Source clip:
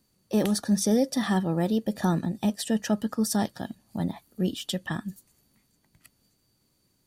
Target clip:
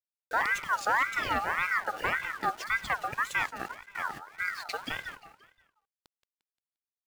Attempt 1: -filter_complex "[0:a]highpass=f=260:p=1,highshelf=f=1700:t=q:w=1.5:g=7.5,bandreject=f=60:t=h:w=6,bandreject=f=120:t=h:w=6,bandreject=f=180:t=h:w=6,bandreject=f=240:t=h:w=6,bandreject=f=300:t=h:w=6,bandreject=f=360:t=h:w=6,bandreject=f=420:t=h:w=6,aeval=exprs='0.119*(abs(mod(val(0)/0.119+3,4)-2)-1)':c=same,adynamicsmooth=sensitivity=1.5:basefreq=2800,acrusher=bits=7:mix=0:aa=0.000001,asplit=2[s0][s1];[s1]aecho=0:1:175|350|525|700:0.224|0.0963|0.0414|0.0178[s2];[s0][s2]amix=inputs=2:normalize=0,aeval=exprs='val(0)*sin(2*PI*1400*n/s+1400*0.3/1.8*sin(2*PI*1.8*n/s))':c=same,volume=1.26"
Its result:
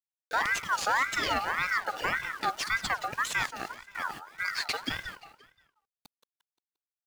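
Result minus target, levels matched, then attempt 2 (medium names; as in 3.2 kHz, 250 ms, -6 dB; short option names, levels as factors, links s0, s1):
4 kHz band +6.0 dB
-filter_complex "[0:a]highpass=f=260:p=1,bandreject=f=60:t=h:w=6,bandreject=f=120:t=h:w=6,bandreject=f=180:t=h:w=6,bandreject=f=240:t=h:w=6,bandreject=f=300:t=h:w=6,bandreject=f=360:t=h:w=6,bandreject=f=420:t=h:w=6,aeval=exprs='0.119*(abs(mod(val(0)/0.119+3,4)-2)-1)':c=same,adynamicsmooth=sensitivity=1.5:basefreq=2800,acrusher=bits=7:mix=0:aa=0.000001,asplit=2[s0][s1];[s1]aecho=0:1:175|350|525|700:0.224|0.0963|0.0414|0.0178[s2];[s0][s2]amix=inputs=2:normalize=0,aeval=exprs='val(0)*sin(2*PI*1400*n/s+1400*0.3/1.8*sin(2*PI*1.8*n/s))':c=same,volume=1.26"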